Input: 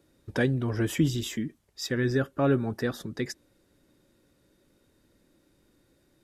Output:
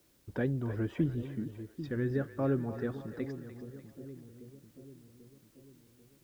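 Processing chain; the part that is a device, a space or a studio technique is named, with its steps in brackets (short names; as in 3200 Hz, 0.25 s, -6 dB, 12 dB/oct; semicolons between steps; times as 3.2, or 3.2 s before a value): 1.04–1.84 LPF 1100 Hz 6 dB/oct; cassette deck with a dirty head (tape spacing loss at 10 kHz 37 dB; wow and flutter; white noise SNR 33 dB); split-band echo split 460 Hz, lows 0.791 s, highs 0.297 s, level -11 dB; gain -5 dB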